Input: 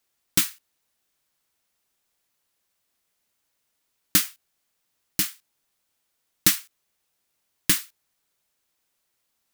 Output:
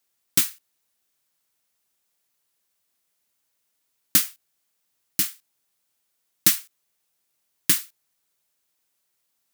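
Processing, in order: high-pass 70 Hz; treble shelf 5.7 kHz +5 dB; trim -2.5 dB

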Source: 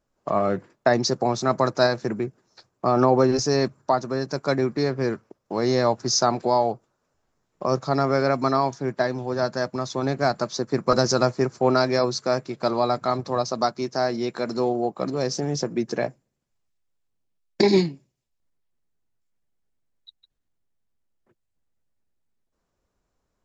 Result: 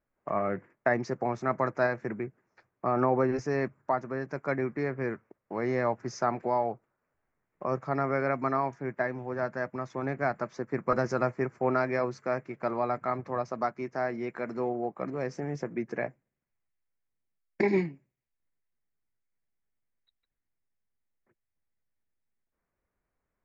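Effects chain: resonant high shelf 2.9 kHz -11 dB, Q 3; trim -8 dB

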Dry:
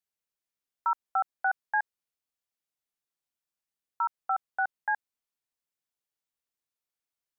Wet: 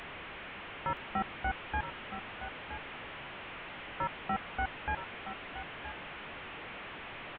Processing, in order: one-bit delta coder 16 kbps, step -40 dBFS; on a send: delay 970 ms -10.5 dB; on the sum: trim +2 dB

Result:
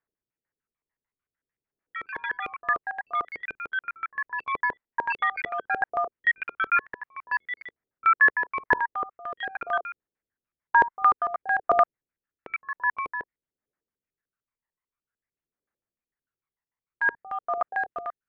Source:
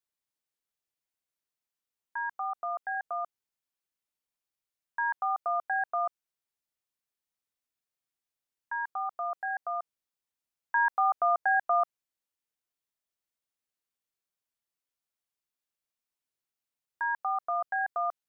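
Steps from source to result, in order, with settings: local Wiener filter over 9 samples; phaser 0.51 Hz, delay 1.1 ms, feedback 61%; ever faster or slower copies 435 ms, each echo +6 st, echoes 3; LFO low-pass square 6.7 Hz 440–1800 Hz

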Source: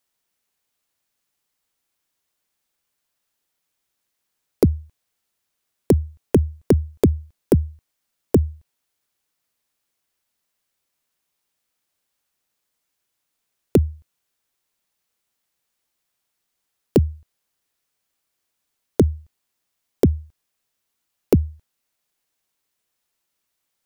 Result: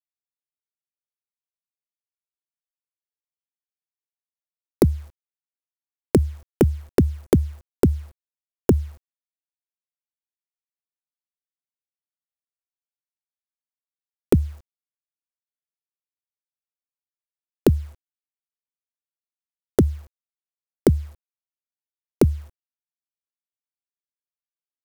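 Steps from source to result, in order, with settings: in parallel at +2.5 dB: compression 12:1, threshold -22 dBFS, peak gain reduction 12 dB; on the sum: bit crusher 8-bit; speed mistake 25 fps video run at 24 fps; trim -4 dB

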